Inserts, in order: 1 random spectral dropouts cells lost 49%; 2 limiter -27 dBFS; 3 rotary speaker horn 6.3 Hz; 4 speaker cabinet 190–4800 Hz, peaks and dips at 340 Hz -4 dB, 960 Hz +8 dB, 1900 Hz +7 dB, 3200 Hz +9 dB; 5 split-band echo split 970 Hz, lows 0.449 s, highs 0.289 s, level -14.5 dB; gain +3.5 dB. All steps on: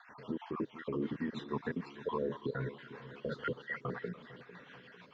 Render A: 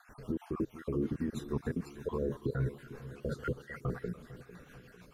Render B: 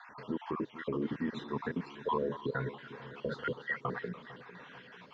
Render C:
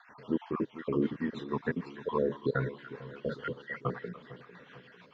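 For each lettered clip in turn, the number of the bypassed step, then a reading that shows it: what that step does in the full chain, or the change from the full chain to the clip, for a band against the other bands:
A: 4, 125 Hz band +11.0 dB; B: 3, 1 kHz band +3.5 dB; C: 2, mean gain reduction 1.5 dB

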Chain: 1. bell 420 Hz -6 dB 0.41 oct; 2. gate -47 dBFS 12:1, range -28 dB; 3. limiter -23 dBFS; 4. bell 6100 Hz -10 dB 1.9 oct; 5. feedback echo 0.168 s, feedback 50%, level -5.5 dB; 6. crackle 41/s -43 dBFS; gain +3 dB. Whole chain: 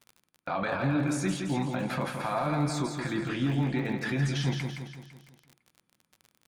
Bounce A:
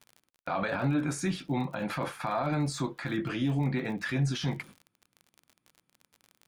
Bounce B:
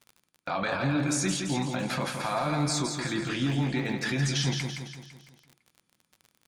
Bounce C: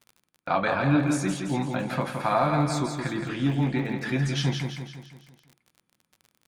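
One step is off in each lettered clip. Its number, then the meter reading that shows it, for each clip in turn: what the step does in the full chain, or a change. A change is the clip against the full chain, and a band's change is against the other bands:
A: 5, momentary loudness spread change -2 LU; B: 4, 8 kHz band +8.5 dB; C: 3, mean gain reduction 2.0 dB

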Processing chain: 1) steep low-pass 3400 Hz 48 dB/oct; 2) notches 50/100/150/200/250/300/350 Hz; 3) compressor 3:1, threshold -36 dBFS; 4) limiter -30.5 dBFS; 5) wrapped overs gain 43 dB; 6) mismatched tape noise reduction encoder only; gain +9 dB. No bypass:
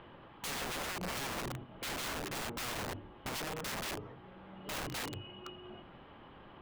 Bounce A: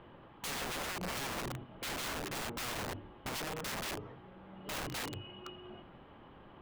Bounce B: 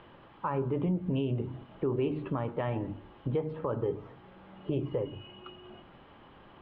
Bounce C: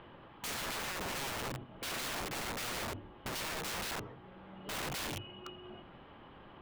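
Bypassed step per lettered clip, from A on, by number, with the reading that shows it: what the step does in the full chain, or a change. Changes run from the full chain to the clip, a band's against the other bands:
6, crest factor change -3.5 dB; 5, 4 kHz band -22.0 dB; 3, mean gain reduction 6.5 dB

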